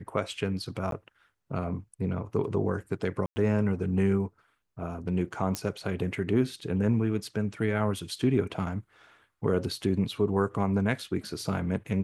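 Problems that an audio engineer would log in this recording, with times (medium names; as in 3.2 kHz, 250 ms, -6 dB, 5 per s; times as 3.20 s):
0.91–0.92 s: dropout
3.26–3.36 s: dropout 100 ms
5.55 s: pop -14 dBFS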